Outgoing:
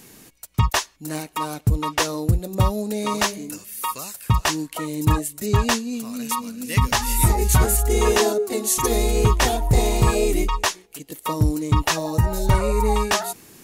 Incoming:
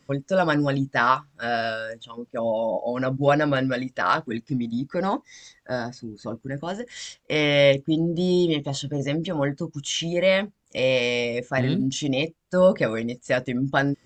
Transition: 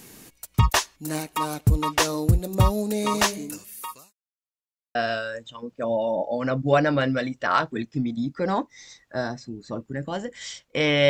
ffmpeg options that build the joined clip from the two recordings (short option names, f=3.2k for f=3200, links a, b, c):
-filter_complex "[0:a]apad=whole_dur=11.09,atrim=end=11.09,asplit=2[a][b];[a]atrim=end=4.13,asetpts=PTS-STARTPTS,afade=t=out:st=3.36:d=0.77[c];[b]atrim=start=4.13:end=4.95,asetpts=PTS-STARTPTS,volume=0[d];[1:a]atrim=start=1.5:end=7.64,asetpts=PTS-STARTPTS,afade=t=in:d=0.004:c=hsin[e];[c][d][e]concat=n=3:v=0:a=1"